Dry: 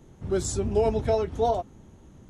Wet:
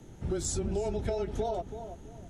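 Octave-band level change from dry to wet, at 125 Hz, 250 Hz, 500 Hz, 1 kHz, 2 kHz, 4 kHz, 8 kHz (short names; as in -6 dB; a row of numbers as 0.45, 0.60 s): -4.5, -4.5, -8.0, -9.5, -5.5, -3.5, -1.5 dB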